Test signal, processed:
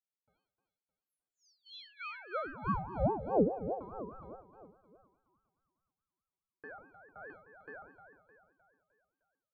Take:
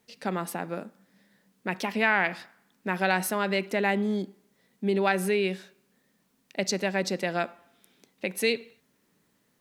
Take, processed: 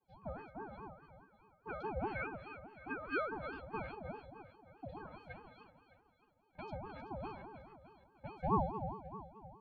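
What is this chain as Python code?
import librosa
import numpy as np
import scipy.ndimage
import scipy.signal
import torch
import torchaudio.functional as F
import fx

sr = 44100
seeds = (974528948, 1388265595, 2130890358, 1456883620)

p1 = fx.octave_resonator(x, sr, note='A#', decay_s=0.61)
p2 = fx.filter_lfo_lowpass(p1, sr, shape='sine', hz=2.9, low_hz=960.0, high_hz=5300.0, q=0.71)
p3 = p2 + fx.echo_feedback(p2, sr, ms=306, feedback_pct=47, wet_db=-9.5, dry=0)
p4 = fx.ring_lfo(p3, sr, carrier_hz=480.0, swing_pct=40, hz=4.8)
y = F.gain(torch.from_numpy(p4), 9.0).numpy()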